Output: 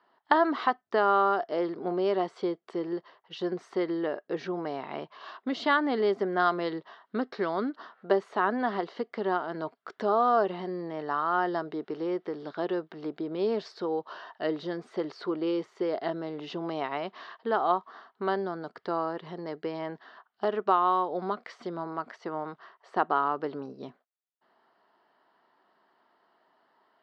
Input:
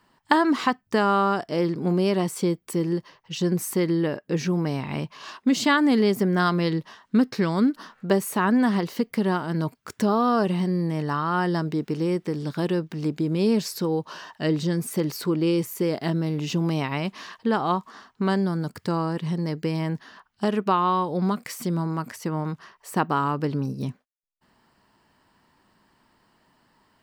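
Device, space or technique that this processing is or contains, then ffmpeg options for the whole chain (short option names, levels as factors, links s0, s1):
phone earpiece: -af "highpass=390,equalizer=f=390:t=q:w=4:g=5,equalizer=f=690:t=q:w=4:g=8,equalizer=f=1300:t=q:w=4:g=4,equalizer=f=2500:t=q:w=4:g=-8,lowpass=f=3900:w=0.5412,lowpass=f=3900:w=1.3066,volume=0.596"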